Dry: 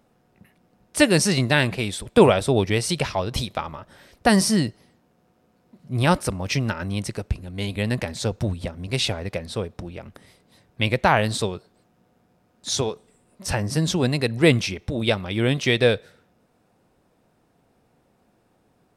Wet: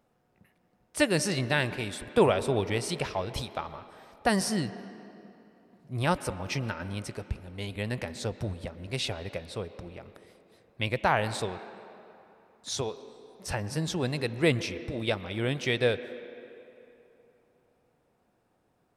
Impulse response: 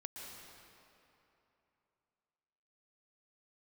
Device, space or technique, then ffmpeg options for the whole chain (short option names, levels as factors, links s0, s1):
filtered reverb send: -filter_complex "[0:a]asplit=2[s0][s1];[s1]highpass=f=210:w=0.5412,highpass=f=210:w=1.3066,lowpass=3100[s2];[1:a]atrim=start_sample=2205[s3];[s2][s3]afir=irnorm=-1:irlink=0,volume=0.501[s4];[s0][s4]amix=inputs=2:normalize=0,volume=0.376"